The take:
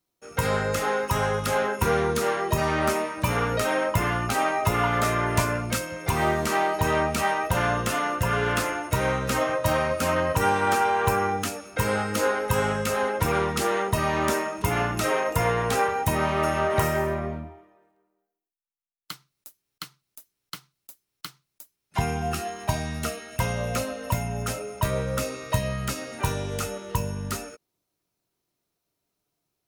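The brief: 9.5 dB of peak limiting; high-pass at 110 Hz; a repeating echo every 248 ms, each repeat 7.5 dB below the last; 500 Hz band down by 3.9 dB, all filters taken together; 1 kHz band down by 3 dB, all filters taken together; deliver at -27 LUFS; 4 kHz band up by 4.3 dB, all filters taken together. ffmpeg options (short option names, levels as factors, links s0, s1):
-af "highpass=110,equalizer=f=500:t=o:g=-4,equalizer=f=1000:t=o:g=-3,equalizer=f=4000:t=o:g=6,alimiter=limit=0.112:level=0:latency=1,aecho=1:1:248|496|744|992|1240:0.422|0.177|0.0744|0.0312|0.0131,volume=1.19"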